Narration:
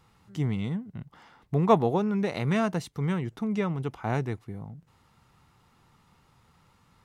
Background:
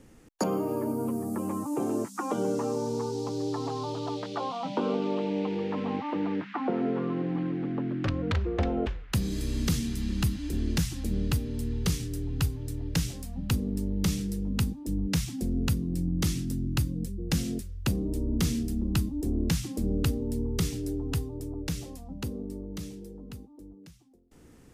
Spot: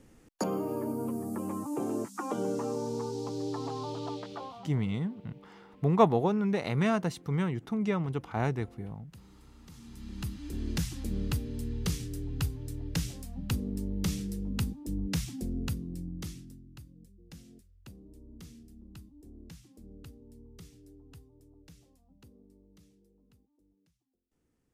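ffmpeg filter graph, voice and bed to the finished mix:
ffmpeg -i stem1.wav -i stem2.wav -filter_complex "[0:a]adelay=4300,volume=-1.5dB[link_01];[1:a]volume=18dB,afade=type=out:start_time=4.08:duration=0.68:silence=0.0794328,afade=type=in:start_time=9.72:duration=1.14:silence=0.0841395,afade=type=out:start_time=15.28:duration=1.36:silence=0.11885[link_02];[link_01][link_02]amix=inputs=2:normalize=0" out.wav

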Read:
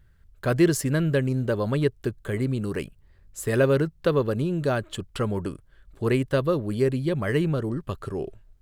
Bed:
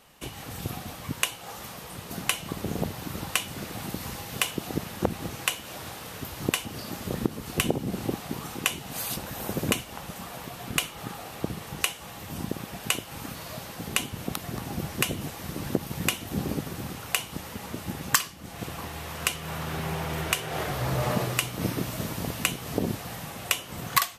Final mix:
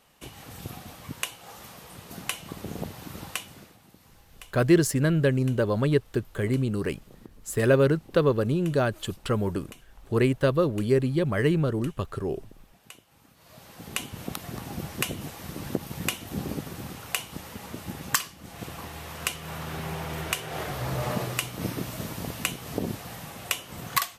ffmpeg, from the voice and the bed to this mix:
ffmpeg -i stem1.wav -i stem2.wav -filter_complex "[0:a]adelay=4100,volume=0.5dB[link_01];[1:a]volume=13.5dB,afade=type=out:start_time=3.26:duration=0.52:silence=0.158489,afade=type=in:start_time=13.36:duration=0.82:silence=0.11885[link_02];[link_01][link_02]amix=inputs=2:normalize=0" out.wav

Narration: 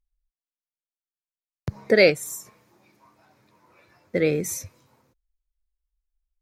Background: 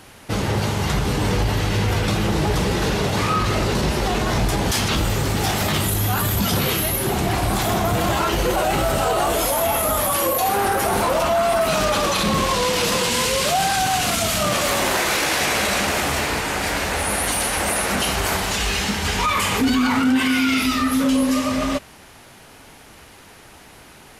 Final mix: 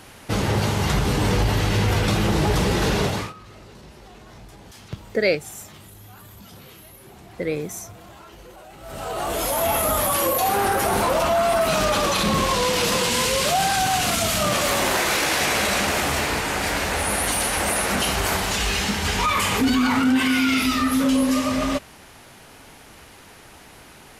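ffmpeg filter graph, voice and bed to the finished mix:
ffmpeg -i stem1.wav -i stem2.wav -filter_complex "[0:a]adelay=3250,volume=-4dB[link_01];[1:a]volume=23dB,afade=type=out:start_time=3.03:duration=0.3:silence=0.0630957,afade=type=in:start_time=8.8:duration=0.91:silence=0.0707946[link_02];[link_01][link_02]amix=inputs=2:normalize=0" out.wav

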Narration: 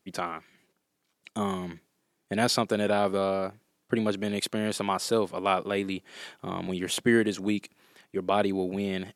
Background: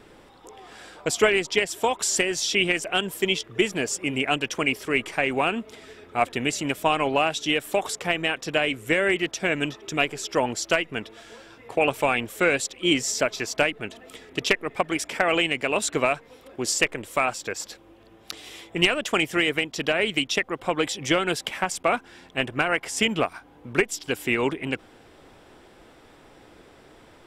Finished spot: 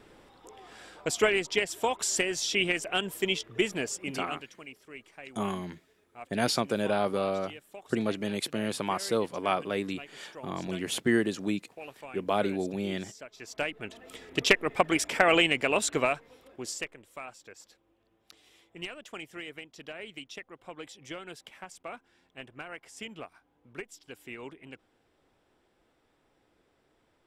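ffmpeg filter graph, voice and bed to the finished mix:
ffmpeg -i stem1.wav -i stem2.wav -filter_complex "[0:a]adelay=4000,volume=-2.5dB[link_01];[1:a]volume=17.5dB,afade=type=out:start_time=3.74:duration=0.78:silence=0.133352,afade=type=in:start_time=13.31:duration=1.2:silence=0.0749894,afade=type=out:start_time=15.35:duration=1.62:silence=0.112202[link_02];[link_01][link_02]amix=inputs=2:normalize=0" out.wav

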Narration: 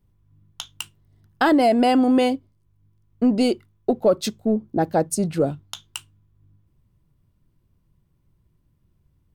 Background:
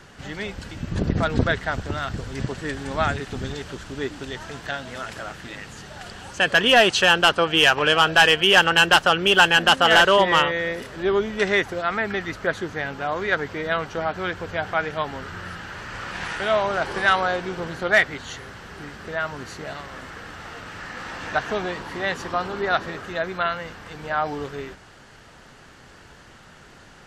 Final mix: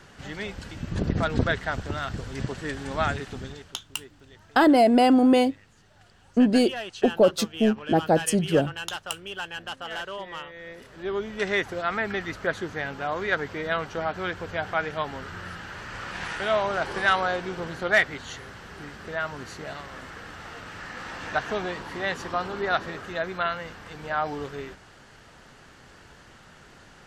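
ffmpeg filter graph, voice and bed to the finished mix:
ffmpeg -i stem1.wav -i stem2.wav -filter_complex "[0:a]adelay=3150,volume=-0.5dB[link_01];[1:a]volume=13.5dB,afade=type=out:start_time=3.17:duration=0.6:silence=0.149624,afade=type=in:start_time=10.52:duration=1.33:silence=0.149624[link_02];[link_01][link_02]amix=inputs=2:normalize=0" out.wav

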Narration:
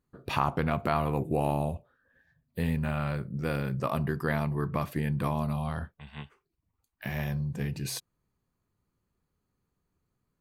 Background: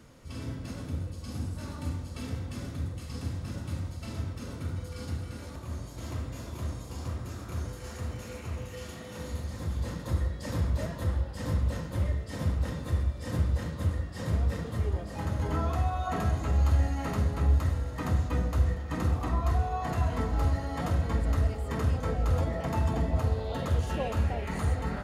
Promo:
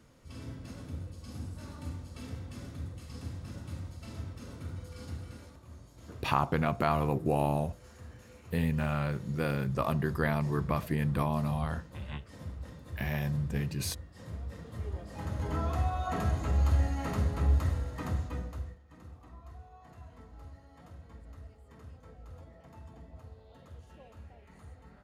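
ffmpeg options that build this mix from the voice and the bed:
ffmpeg -i stem1.wav -i stem2.wav -filter_complex "[0:a]adelay=5950,volume=-0.5dB[link_01];[1:a]volume=5dB,afade=type=out:start_time=5.32:duration=0.26:silence=0.446684,afade=type=in:start_time=14.47:duration=1.34:silence=0.281838,afade=type=out:start_time=17.76:duration=1.03:silence=0.0944061[link_02];[link_01][link_02]amix=inputs=2:normalize=0" out.wav

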